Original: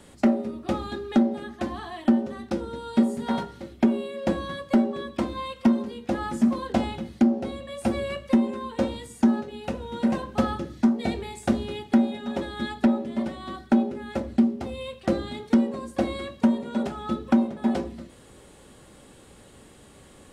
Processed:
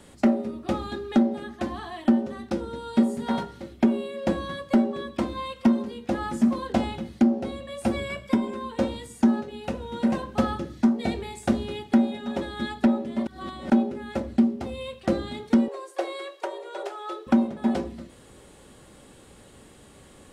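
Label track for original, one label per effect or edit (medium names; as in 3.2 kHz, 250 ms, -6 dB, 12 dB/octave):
7.960000	8.540000	rippled EQ curve crests per octave 1.7, crest to trough 10 dB
13.270000	13.700000	reverse
15.680000	17.270000	elliptic high-pass 370 Hz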